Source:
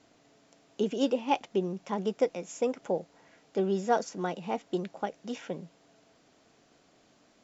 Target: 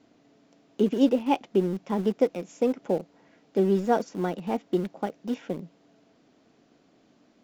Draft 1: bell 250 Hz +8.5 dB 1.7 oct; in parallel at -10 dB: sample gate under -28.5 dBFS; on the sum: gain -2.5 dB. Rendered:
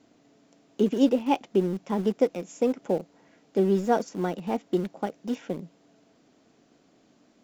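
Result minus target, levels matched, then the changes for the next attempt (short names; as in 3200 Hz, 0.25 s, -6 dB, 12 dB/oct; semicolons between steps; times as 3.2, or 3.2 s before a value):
8000 Hz band +3.5 dB
add first: LPF 5800 Hz 12 dB/oct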